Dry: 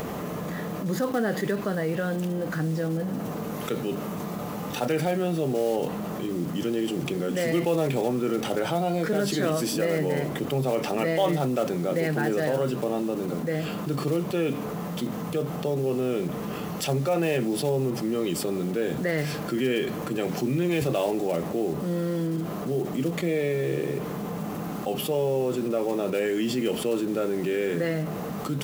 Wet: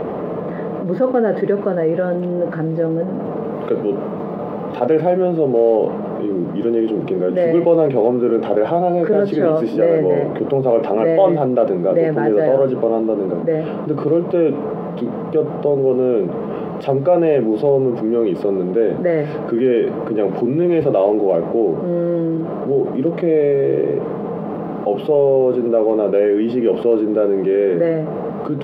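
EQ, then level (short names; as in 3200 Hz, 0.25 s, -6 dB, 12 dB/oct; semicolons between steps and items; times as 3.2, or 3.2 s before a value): air absorption 420 m; bell 490 Hz +14.5 dB 2.5 oct; high shelf 4800 Hz +7 dB; -1.0 dB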